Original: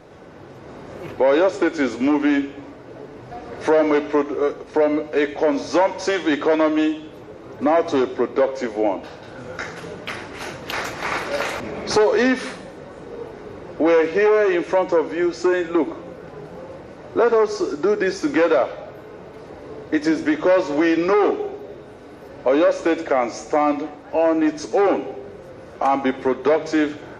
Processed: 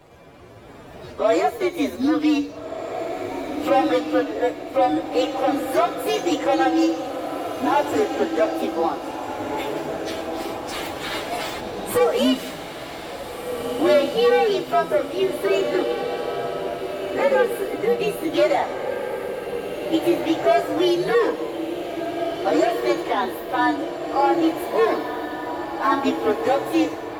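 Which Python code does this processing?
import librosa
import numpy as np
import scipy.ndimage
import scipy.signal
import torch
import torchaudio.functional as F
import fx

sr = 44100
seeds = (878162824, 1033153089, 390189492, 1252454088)

y = fx.partial_stretch(x, sr, pct=125)
y = fx.echo_diffused(y, sr, ms=1730, feedback_pct=54, wet_db=-7.0)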